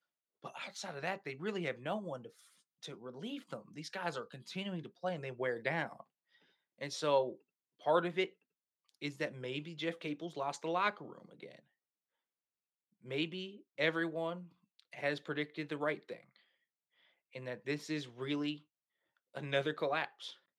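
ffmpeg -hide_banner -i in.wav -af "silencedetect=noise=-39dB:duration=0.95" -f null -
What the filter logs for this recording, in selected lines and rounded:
silence_start: 11.43
silence_end: 13.11 | silence_duration: 1.68
silence_start: 16.13
silence_end: 17.35 | silence_duration: 1.22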